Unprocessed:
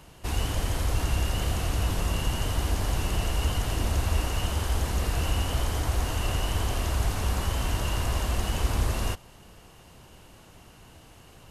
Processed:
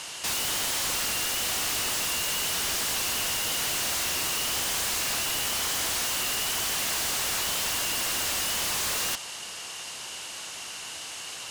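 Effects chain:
meter weighting curve ITU-R 468
in parallel at −6 dB: sine wavefolder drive 18 dB, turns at −14.5 dBFS
on the sum: level −6.5 dB

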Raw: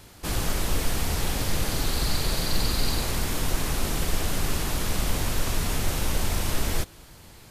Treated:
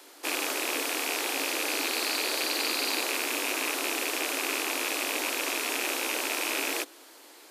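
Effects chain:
loose part that buzzes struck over −32 dBFS, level −18 dBFS
Butterworth high-pass 270 Hz 72 dB per octave

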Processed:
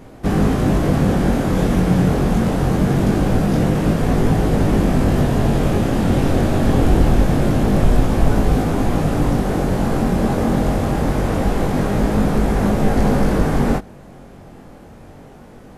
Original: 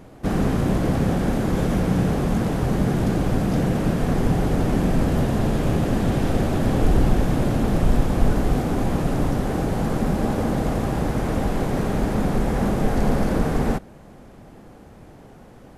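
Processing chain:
chorus effect 0.24 Hz, delay 19 ms, depth 3.3 ms
level +7.5 dB

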